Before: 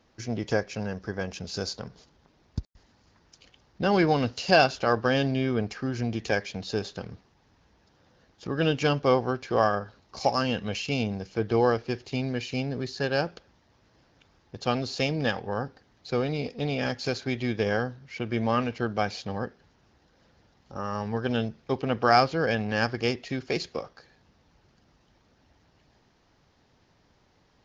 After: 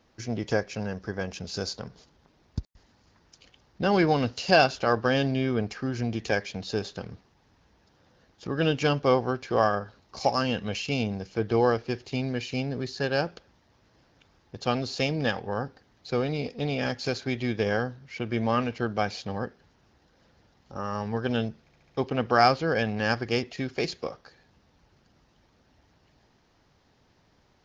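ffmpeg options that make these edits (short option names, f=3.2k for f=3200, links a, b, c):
-filter_complex "[0:a]asplit=5[a][b][c][d][e];[a]atrim=end=21.692[f];[b]atrim=start=21.618:end=21.692[g];[c]atrim=start=21.618:end=21.692[h];[d]atrim=start=21.618:end=21.692[i];[e]atrim=start=21.618[j];[f][g]acrossfade=d=0.004:c1=hsin:c2=hsin[k];[k][h]acrossfade=d=0.004:c1=hsin:c2=hsin[l];[l][i]acrossfade=d=0.004:c1=hsin:c2=hsin[m];[m][j]acrossfade=d=0.004:c1=hsin:c2=hsin"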